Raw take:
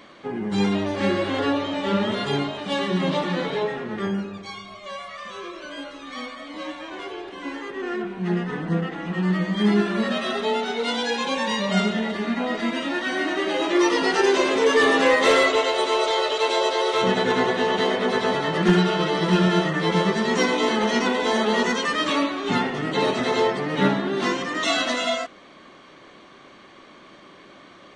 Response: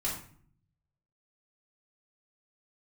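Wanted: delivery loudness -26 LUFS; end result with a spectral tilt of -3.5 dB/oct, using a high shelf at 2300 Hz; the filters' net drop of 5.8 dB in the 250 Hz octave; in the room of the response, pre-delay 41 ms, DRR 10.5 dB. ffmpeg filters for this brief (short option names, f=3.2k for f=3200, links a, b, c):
-filter_complex "[0:a]equalizer=f=250:t=o:g=-8.5,highshelf=f=2.3k:g=3.5,asplit=2[a][b];[1:a]atrim=start_sample=2205,adelay=41[c];[b][c]afir=irnorm=-1:irlink=0,volume=-15.5dB[d];[a][d]amix=inputs=2:normalize=0,volume=-3.5dB"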